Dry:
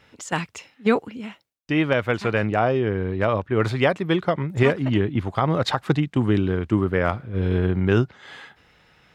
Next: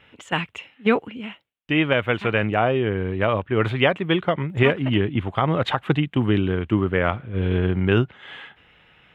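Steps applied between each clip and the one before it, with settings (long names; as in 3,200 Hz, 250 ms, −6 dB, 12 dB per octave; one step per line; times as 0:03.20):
high shelf with overshoot 3,900 Hz −8.5 dB, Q 3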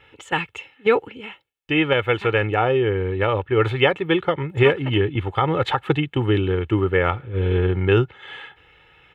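comb filter 2.3 ms, depth 65%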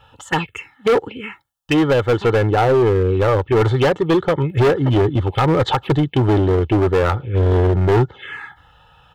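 phaser swept by the level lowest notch 350 Hz, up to 2,500 Hz, full sweep at −18 dBFS
hard clipping −19 dBFS, distortion −9 dB
level +8 dB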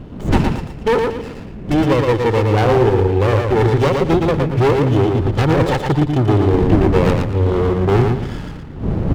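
wind on the microphone 220 Hz −24 dBFS
repeating echo 115 ms, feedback 31%, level −4 dB
windowed peak hold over 17 samples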